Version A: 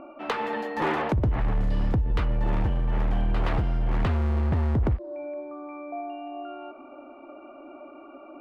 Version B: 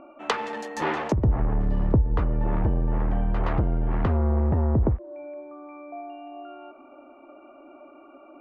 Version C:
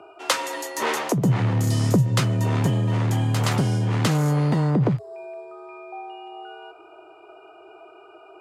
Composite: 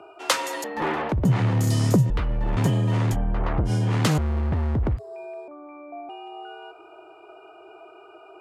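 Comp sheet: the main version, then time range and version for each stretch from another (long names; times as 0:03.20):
C
0:00.64–0:01.25: punch in from A
0:02.10–0:02.57: punch in from A
0:03.14–0:03.68: punch in from B, crossfade 0.06 s
0:04.18–0:04.97: punch in from A
0:05.48–0:06.09: punch in from B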